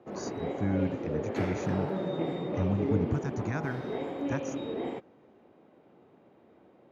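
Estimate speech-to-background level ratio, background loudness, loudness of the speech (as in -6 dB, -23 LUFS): 0.0 dB, -34.5 LUFS, -34.5 LUFS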